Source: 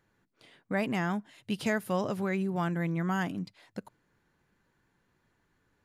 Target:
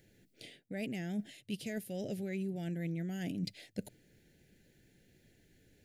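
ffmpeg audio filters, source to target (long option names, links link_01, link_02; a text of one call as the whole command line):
ffmpeg -i in.wav -af "highshelf=frequency=8300:gain=5.5,areverse,acompressor=threshold=-42dB:ratio=16,areverse,asuperstop=centerf=1100:order=4:qfactor=0.79,volume=8dB" out.wav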